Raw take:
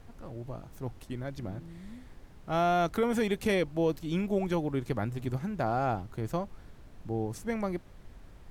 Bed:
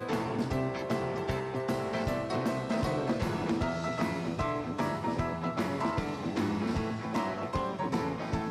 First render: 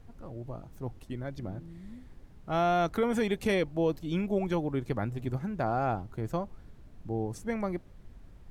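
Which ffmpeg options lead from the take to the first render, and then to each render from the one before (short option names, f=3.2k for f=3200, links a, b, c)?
-af "afftdn=nr=6:nf=-52"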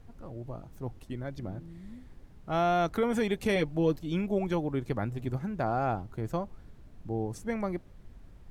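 -filter_complex "[0:a]asettb=1/sr,asplit=3[a][b][c];[a]atrim=end=3.554[d];[b]atrim=start=3.55:end=3.96,asetpts=PTS-STARTPTS,afade=t=in:d=0.004:c=qsin,afade=t=out:st=0.406:d=0.004:c=qsin,aecho=1:1:6.8:0.65,atrim=end_sample=18081[e];[c]atrim=start=3.956[f];[d][e]acrossfade=d=0.004:c1=hsin:c2=qsin[g];[g][f]acrossfade=d=0.004:c1=qsin:c2=hsin"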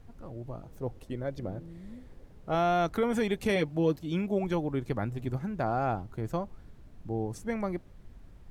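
-filter_complex "[0:a]asettb=1/sr,asplit=3[a][b][c];[a]atrim=end=0.644[d];[b]atrim=start=0.64:end=2.55,asetpts=PTS-STARTPTS,afade=t=in:d=0.004:c=qsin,afade=t=out:st=1.906:d=0.004:c=qsin,equalizer=f=500:t=o:w=0.65:g=8.5[e];[c]atrim=start=2.546[f];[d][e]acrossfade=d=0.004:c1=hsin:c2=qsin[g];[g][f]acrossfade=d=0.004:c1=qsin:c2=hsin,asettb=1/sr,asplit=3[h][i][j];[h]atrim=end=3.504[k];[i]atrim=start=3.5:end=4.44,asetpts=PTS-STARTPTS,afade=t=in:d=0.004:c=qsin,afade=t=out:st=0.936:d=0.004:c=qsin,highpass=56[l];[j]atrim=start=4.436[m];[k][l]acrossfade=d=0.004:c1=hsin:c2=qsin[n];[n][m]acrossfade=d=0.004:c1=qsin:c2=hsin"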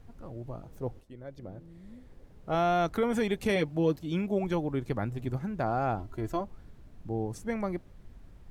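-filter_complex "[0:a]asettb=1/sr,asplit=3[a][b][c];[a]atrim=end=5.994[d];[b]atrim=start=5.99:end=6.41,asetpts=PTS-STARTPTS,afade=t=in:d=0.004:c=qsin,afade=t=out:st=0.416:d=0.004:c=qsin,aecho=1:1:3:0.65,atrim=end_sample=18522[e];[c]atrim=start=6.406[f];[d][e]acrossfade=d=0.004:c1=hsin:c2=qsin[g];[g][f]acrossfade=d=0.004:c1=qsin:c2=hsin,asplit=2[h][i];[h]atrim=end=1.01,asetpts=PTS-STARTPTS,afade=t=out:st=1.006:d=0.004:c=hsin:silence=0.211349[j];[i]atrim=start=1.01,asetpts=PTS-STARTPTS,afade=t=in:d=1.58:silence=0.211349[k];[j][k]concat=n=2:v=0:a=1"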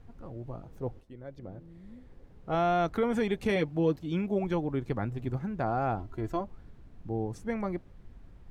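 -af "highshelf=f=5.6k:g=-9.5,bandreject=f=610:w=19"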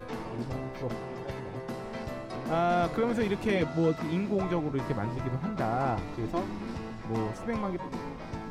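-filter_complex "[1:a]volume=-6dB[a];[0:a][a]amix=inputs=2:normalize=0"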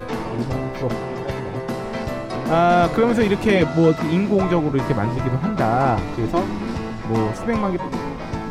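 -af "volume=11dB"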